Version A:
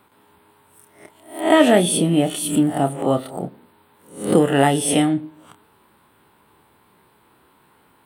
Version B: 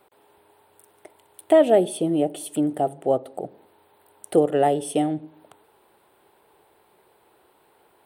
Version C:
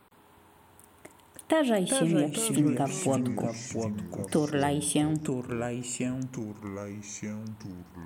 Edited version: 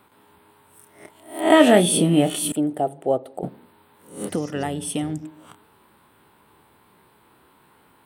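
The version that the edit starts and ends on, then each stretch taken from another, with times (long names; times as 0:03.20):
A
0:02.52–0:03.43: punch in from B
0:04.27–0:05.24: punch in from C, crossfade 0.06 s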